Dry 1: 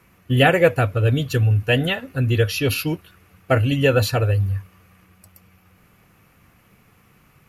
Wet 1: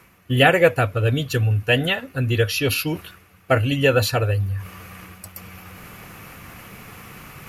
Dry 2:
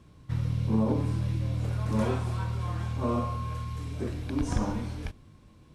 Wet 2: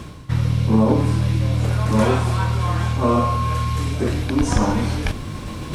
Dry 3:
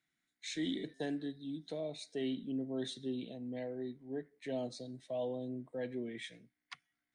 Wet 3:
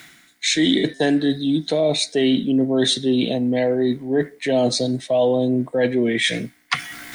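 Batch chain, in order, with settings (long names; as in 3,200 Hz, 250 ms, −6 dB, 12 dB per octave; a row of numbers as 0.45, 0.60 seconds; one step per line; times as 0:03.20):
low-shelf EQ 440 Hz −4.5 dB
reversed playback
upward compression, threshold −28 dBFS
reversed playback
loudness normalisation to −20 LKFS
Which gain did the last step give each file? +2.0, +13.5, +17.5 decibels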